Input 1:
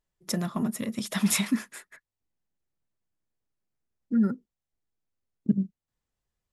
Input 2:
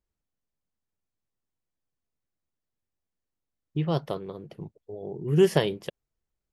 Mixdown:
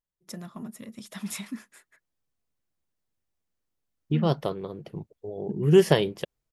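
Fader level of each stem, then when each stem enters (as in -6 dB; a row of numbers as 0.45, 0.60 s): -10.5, +2.5 dB; 0.00, 0.35 s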